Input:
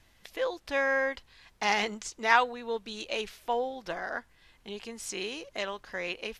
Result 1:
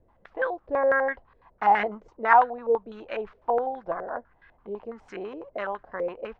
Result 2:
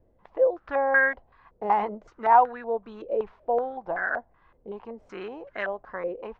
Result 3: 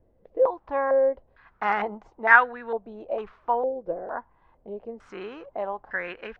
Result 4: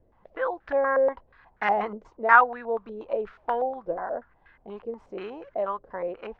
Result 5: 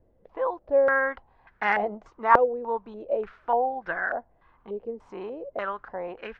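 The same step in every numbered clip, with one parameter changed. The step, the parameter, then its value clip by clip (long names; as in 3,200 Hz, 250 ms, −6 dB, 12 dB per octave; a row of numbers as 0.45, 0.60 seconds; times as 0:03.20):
low-pass on a step sequencer, speed: 12, 5.3, 2.2, 8.3, 3.4 Hertz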